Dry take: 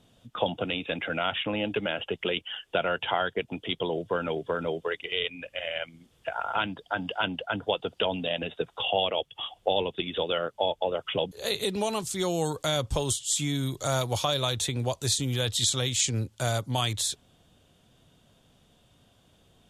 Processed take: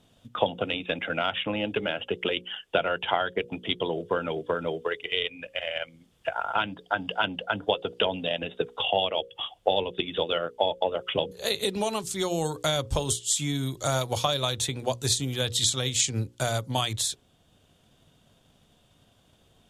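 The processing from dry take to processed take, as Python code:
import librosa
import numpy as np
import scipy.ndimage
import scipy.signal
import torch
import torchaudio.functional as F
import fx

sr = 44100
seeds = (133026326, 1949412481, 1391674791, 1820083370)

y = fx.hum_notches(x, sr, base_hz=60, count=9)
y = fx.transient(y, sr, attack_db=4, sustain_db=-2)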